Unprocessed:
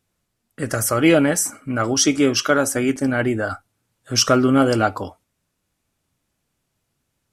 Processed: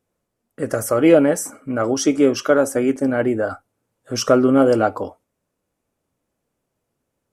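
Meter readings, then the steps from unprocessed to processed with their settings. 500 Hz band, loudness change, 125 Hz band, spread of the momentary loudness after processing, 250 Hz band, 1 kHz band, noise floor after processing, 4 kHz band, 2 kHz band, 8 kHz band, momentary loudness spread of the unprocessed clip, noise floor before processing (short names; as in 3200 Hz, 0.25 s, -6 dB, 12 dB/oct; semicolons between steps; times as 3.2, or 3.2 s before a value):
+4.0 dB, +0.5 dB, -4.0 dB, 13 LU, +1.0 dB, -1.5 dB, -78 dBFS, -8.0 dB, -4.5 dB, -6.5 dB, 12 LU, -75 dBFS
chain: graphic EQ 250/500/1000/4000 Hz +4/+10/+3/-4 dB; gain -5.5 dB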